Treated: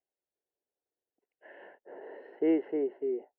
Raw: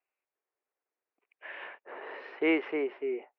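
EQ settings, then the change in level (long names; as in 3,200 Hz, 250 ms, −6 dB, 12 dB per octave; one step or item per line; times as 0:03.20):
moving average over 37 samples
+2.5 dB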